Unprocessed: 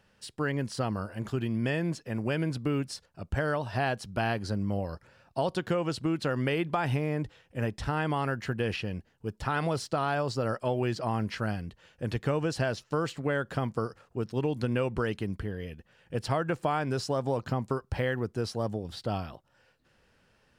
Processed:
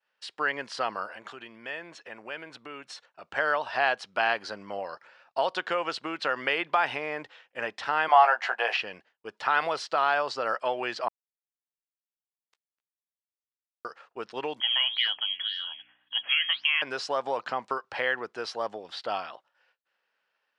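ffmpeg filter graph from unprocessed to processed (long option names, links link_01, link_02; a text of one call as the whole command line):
ffmpeg -i in.wav -filter_complex "[0:a]asettb=1/sr,asplit=3[link_01][link_02][link_03];[link_01]atrim=end=1.164[link_04];[link_02]atrim=start=1.16:end=3.23,asetpts=PTS-STARTPTS,afade=type=in:duration=0.004:curve=qsin,afade=type=out:start_time=2.066:duration=0.004:curve=qsin,bandreject=frequency=4900:width=7,acompressor=threshold=-40dB:ratio=2:attack=3.2:release=140:knee=1:detection=peak[link_05];[link_03]atrim=start=3.226[link_06];[link_04][link_05]acrossfade=duration=0.004:curve1=hsin:curve2=qsin[link_07];[link_07][link_06]acrossfade=duration=0.004:curve1=qsin:curve2=hsin,asettb=1/sr,asplit=3[link_08][link_09][link_10];[link_08]atrim=end=8.084[link_11];[link_09]atrim=start=8.08:end=8.77,asetpts=PTS-STARTPTS,afade=type=in:duration=0.004:curve=qsin,afade=type=out:start_time=0.686:duration=0.004:curve=qsin,highpass=frequency=720:width_type=q:width=4.2,asplit=2[link_12][link_13];[link_13]adelay=17,volume=-6dB[link_14];[link_12][link_14]amix=inputs=2:normalize=0,atrim=end_sample=30429[link_15];[link_10]atrim=start=8.766[link_16];[link_11][link_15]acrossfade=duration=0.004:curve1=hsin:curve2=qsin[link_17];[link_17][link_16]acrossfade=duration=0.004:curve1=qsin:curve2=hsin,asettb=1/sr,asplit=3[link_18][link_19][link_20];[link_18]atrim=end=11.084[link_21];[link_19]atrim=start=11.08:end=13.85,asetpts=PTS-STARTPTS,afade=type=in:duration=0.004:curve=qsin,afade=type=out:start_time=2.766:duration=0.004:curve=qsin,aderivative,acrossover=split=190|4400[link_22][link_23][link_24];[link_23]adelay=160[link_25];[link_22]adelay=280[link_26];[link_26][link_25][link_24]amix=inputs=3:normalize=0,atrim=end_sample=122157,acrusher=bits=4:mix=0:aa=0.5[link_27];[link_20]atrim=start=13.846[link_28];[link_21][link_27]acrossfade=duration=0.004:curve1=hsin:curve2=qsin[link_29];[link_29][link_28]acrossfade=duration=0.004:curve1=qsin:curve2=hsin,asettb=1/sr,asplit=3[link_30][link_31][link_32];[link_30]atrim=end=14.604[link_33];[link_31]atrim=start=14.6:end=16.82,asetpts=PTS-STARTPTS,afade=type=in:duration=0.004:curve=qsin,afade=type=out:start_time=2.216:duration=0.004:curve=qsin,lowpass=frequency=2900:width_type=q:width=0.5098,lowpass=frequency=2900:width_type=q:width=0.6013,lowpass=frequency=2900:width_type=q:width=0.9,lowpass=frequency=2900:width_type=q:width=2.563,afreqshift=-3400,flanger=delay=3.8:depth=7.5:regen=83:speed=1.9:shape=sinusoidal,aeval=exprs='val(0)+0.002*(sin(2*PI*60*n/s)+sin(2*PI*2*60*n/s)/2+sin(2*PI*3*60*n/s)/3+sin(2*PI*4*60*n/s)/4+sin(2*PI*5*60*n/s)/5)':channel_layout=same[link_34];[link_32]atrim=start=16.816[link_35];[link_33][link_34]acrossfade=duration=0.004:curve1=hsin:curve2=qsin[link_36];[link_36][link_35]acrossfade=duration=0.004:curve1=qsin:curve2=hsin,highpass=810,agate=range=-33dB:threshold=-59dB:ratio=3:detection=peak,lowpass=3900,volume=8dB" out.wav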